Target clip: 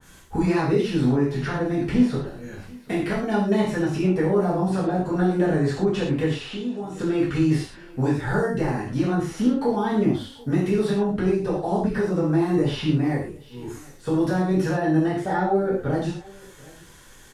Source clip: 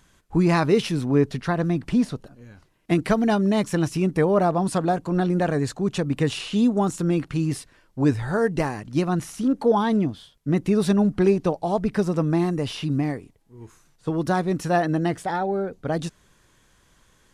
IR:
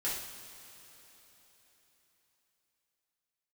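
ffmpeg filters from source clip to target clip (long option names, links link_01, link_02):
-filter_complex "[0:a]highshelf=frequency=9200:gain=7.5,acrossover=split=350|4900[link_01][link_02][link_03];[link_01]acompressor=threshold=-28dB:ratio=4[link_04];[link_02]acompressor=threshold=-32dB:ratio=4[link_05];[link_03]acompressor=threshold=-57dB:ratio=4[link_06];[link_04][link_05][link_06]amix=inputs=3:normalize=0,alimiter=limit=-21dB:level=0:latency=1:release=467,asettb=1/sr,asplit=3[link_07][link_08][link_09];[link_07]atrim=end=6.354[link_10];[link_08]atrim=start=6.35:end=6.99,asetpts=PTS-STARTPTS,afade=type=in:duration=0.004:curve=qsin,afade=type=out:start_time=0.636:duration=0.004:curve=qsin,acompressor=threshold=-42dB:ratio=2.5[link_11];[link_09]atrim=start=6.986[link_12];[link_10][link_11]acrossfade=duration=0.004:curve1=hsin:curve2=qsin[link_13];[link_13][link_12]acrossfade=duration=0.004:curve1=qsin:curve2=hsin,aecho=1:1:737:0.0668[link_14];[1:a]atrim=start_sample=2205,atrim=end_sample=6174[link_15];[link_14][link_15]afir=irnorm=-1:irlink=0,adynamicequalizer=threshold=0.00398:dfrequency=1900:dqfactor=0.7:tfrequency=1900:tqfactor=0.7:attack=5:release=100:ratio=0.375:range=2.5:mode=cutabove:tftype=highshelf,volume=6.5dB"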